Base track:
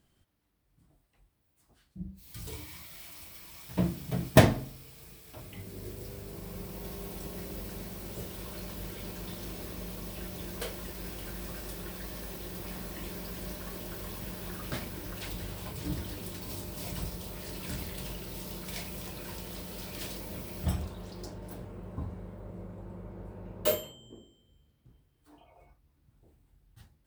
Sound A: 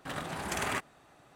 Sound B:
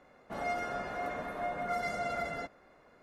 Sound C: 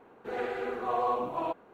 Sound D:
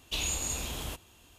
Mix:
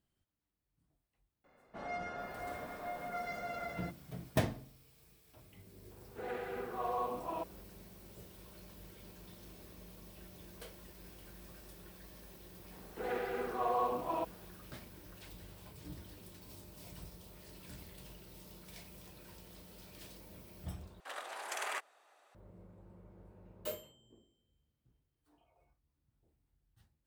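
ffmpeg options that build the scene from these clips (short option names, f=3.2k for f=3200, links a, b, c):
-filter_complex "[3:a]asplit=2[a][b];[0:a]volume=-13.5dB[c];[2:a]lowpass=6.1k[d];[1:a]highpass=f=480:w=0.5412,highpass=f=480:w=1.3066[e];[c]asplit=2[f][g];[f]atrim=end=21.004[h];[e]atrim=end=1.35,asetpts=PTS-STARTPTS,volume=-5.5dB[i];[g]atrim=start=22.346[j];[d]atrim=end=3.02,asetpts=PTS-STARTPTS,volume=-6.5dB,afade=t=in:d=0.004:c=hsin,afade=t=out:st=3.016:d=0.004:c=hsin,adelay=1440[k];[a]atrim=end=1.73,asetpts=PTS-STARTPTS,volume=-7.5dB,afade=t=in:d=0.004:c=hsin,afade=t=out:st=1.726:d=0.004:c=hsin,adelay=5910[l];[b]atrim=end=1.73,asetpts=PTS-STARTPTS,volume=-4dB,afade=t=in:d=0.004:c=hsin,afade=t=out:st=1.726:d=0.004:c=hsin,adelay=12720[m];[h][i]acrossfade=d=0.004:c1=hsin:c2=hsin[n];[n][j]acrossfade=d=0.004:c1=hsin:c2=hsin[o];[o][k][l][m]amix=inputs=4:normalize=0"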